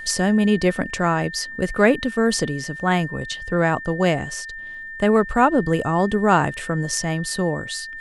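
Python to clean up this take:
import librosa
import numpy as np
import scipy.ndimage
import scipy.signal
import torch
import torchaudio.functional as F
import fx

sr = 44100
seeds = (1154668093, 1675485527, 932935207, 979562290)

y = fx.fix_declick_ar(x, sr, threshold=6.5)
y = fx.notch(y, sr, hz=1800.0, q=30.0)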